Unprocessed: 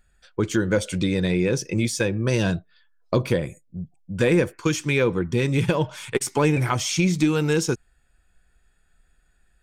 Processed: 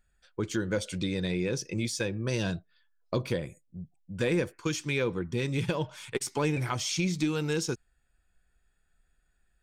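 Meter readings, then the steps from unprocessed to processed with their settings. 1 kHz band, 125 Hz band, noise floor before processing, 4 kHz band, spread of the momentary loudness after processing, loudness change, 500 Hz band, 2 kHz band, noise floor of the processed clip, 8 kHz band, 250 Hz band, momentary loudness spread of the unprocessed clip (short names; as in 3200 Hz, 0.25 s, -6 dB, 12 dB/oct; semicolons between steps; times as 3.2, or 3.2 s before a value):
-8.5 dB, -8.5 dB, -64 dBFS, -5.0 dB, 10 LU, -8.0 dB, -8.5 dB, -7.5 dB, -72 dBFS, -6.5 dB, -8.5 dB, 9 LU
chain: dynamic EQ 4400 Hz, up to +5 dB, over -42 dBFS, Q 1.3; gain -8.5 dB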